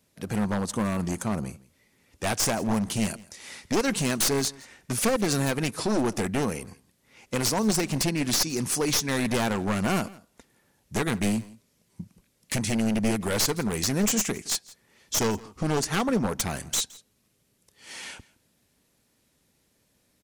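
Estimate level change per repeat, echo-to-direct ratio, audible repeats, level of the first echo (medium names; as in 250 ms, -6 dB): no regular repeats, -22.0 dB, 1, -22.0 dB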